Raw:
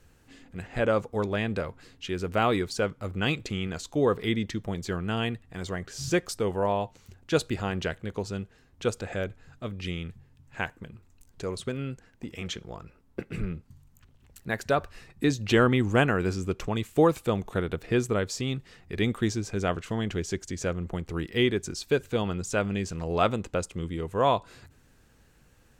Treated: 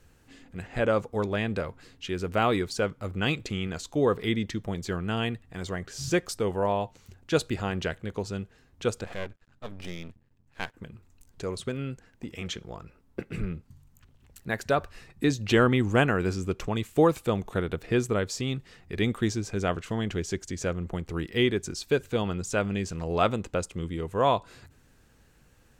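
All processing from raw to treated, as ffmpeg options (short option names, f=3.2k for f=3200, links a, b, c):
-filter_complex "[0:a]asettb=1/sr,asplit=3[a][b][c];[a]atrim=end=9.044[d];[b]atrim=start=9.04:end=10.74,asetpts=PTS-STARTPTS,afade=t=in:d=0.004:c=qsin,afade=t=out:st=1.696:d=0.004:c=qsin,highshelf=f=7.7k:g=-6.5,agate=range=-6dB:threshold=-44dB:ratio=16:release=100:detection=peak,aeval=exprs='max(val(0),0)':c=same[e];[c]atrim=start=10.736[f];[d][e]acrossfade=d=0.004:c1=hsin:c2=qsin[g];[g][f]acrossfade=d=0.004:c1=qsin:c2=hsin"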